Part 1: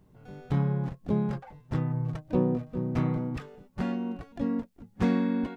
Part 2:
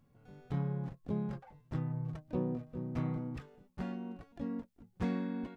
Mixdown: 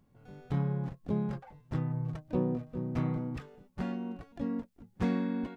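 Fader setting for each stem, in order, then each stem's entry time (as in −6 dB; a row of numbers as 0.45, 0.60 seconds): −11.5, −1.0 decibels; 0.00, 0.00 seconds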